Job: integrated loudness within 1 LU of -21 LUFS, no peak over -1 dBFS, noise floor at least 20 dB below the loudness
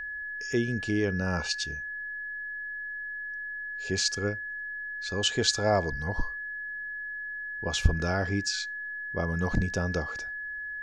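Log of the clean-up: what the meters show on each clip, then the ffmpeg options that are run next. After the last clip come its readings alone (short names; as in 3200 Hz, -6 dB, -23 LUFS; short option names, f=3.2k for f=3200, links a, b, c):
steady tone 1700 Hz; tone level -34 dBFS; loudness -30.5 LUFS; peak -7.0 dBFS; loudness target -21.0 LUFS
-> -af "bandreject=f=1.7k:w=30"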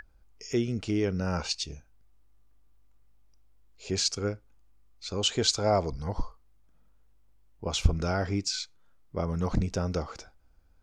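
steady tone none; loudness -30.0 LUFS; peak -7.0 dBFS; loudness target -21.0 LUFS
-> -af "volume=9dB,alimiter=limit=-1dB:level=0:latency=1"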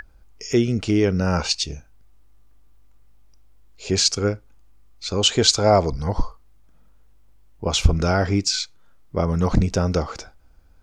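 loudness -21.0 LUFS; peak -1.0 dBFS; noise floor -51 dBFS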